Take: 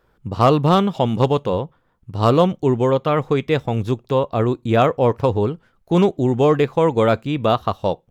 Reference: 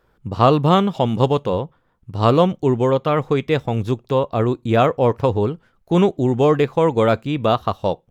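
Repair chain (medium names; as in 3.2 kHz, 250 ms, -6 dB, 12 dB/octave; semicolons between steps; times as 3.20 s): clip repair -5.5 dBFS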